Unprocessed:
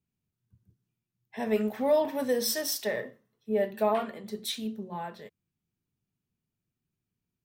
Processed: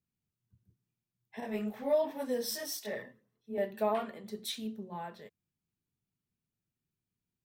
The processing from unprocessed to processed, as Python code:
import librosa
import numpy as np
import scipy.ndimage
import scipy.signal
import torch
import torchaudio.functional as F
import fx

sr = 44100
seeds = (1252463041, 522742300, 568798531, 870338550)

y = fx.chorus_voices(x, sr, voices=2, hz=1.3, base_ms=22, depth_ms=3.0, mix_pct=60, at=(1.4, 3.58))
y = y * 10.0 ** (-4.5 / 20.0)